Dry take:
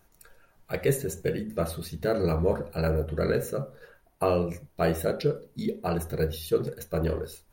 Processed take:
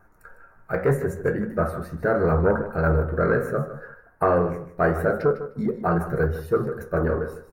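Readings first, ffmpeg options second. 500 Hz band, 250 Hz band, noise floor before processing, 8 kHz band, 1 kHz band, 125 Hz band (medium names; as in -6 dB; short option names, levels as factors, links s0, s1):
+4.5 dB, +4.5 dB, -64 dBFS, no reading, +8.5 dB, +4.5 dB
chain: -filter_complex "[0:a]flanger=delay=9.2:depth=8.4:regen=64:speed=0.76:shape=sinusoidal,aeval=exprs='0.188*(cos(1*acos(clip(val(0)/0.188,-1,1)))-cos(1*PI/2))+0.0237*(cos(5*acos(clip(val(0)/0.188,-1,1)))-cos(5*PI/2))':c=same,highshelf=f=2200:t=q:w=3:g=-14,asplit=2[s0][s1];[s1]aecho=0:1:153|306:0.251|0.0427[s2];[s0][s2]amix=inputs=2:normalize=0,volume=1.78"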